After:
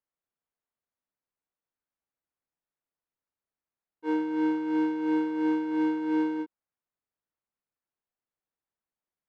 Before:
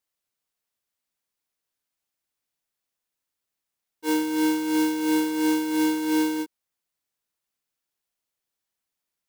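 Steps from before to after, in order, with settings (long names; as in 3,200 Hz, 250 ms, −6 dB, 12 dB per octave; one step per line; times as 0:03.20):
low-pass filter 1,600 Hz 12 dB per octave
level −3.5 dB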